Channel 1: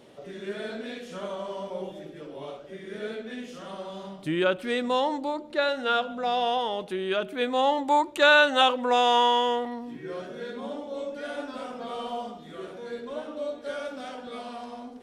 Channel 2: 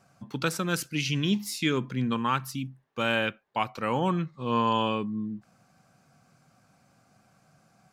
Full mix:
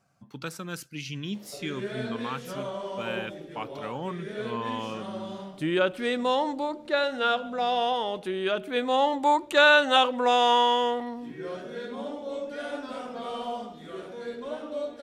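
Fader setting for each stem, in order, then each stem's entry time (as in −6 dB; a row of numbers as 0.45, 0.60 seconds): 0.0, −8.0 decibels; 1.35, 0.00 seconds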